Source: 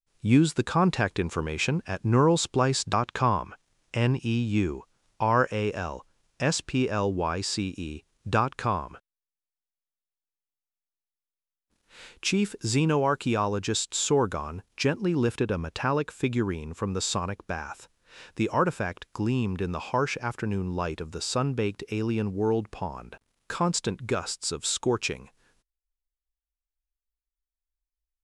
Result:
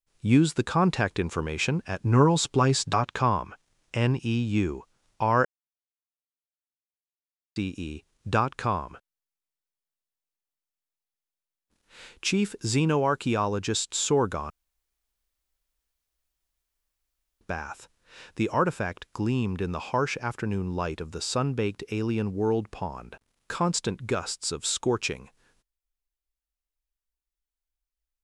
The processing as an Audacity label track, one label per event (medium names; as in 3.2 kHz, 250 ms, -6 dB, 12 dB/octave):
2.050000	3.050000	comb 7.1 ms, depth 52%
5.450000	7.560000	mute
14.500000	17.410000	room tone